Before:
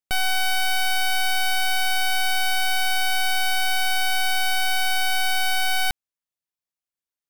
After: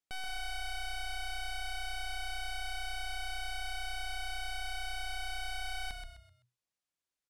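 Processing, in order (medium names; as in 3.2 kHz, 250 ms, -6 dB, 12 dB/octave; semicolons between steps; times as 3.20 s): saturation -38 dBFS, distortion -61 dB; low-pass 9.8 kHz 12 dB/octave; frequency-shifting echo 128 ms, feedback 34%, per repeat -31 Hz, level -6 dB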